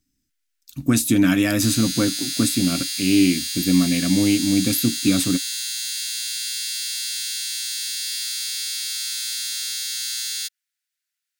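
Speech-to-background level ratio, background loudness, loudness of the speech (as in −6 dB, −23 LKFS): 4.0 dB, −24.5 LKFS, −20.5 LKFS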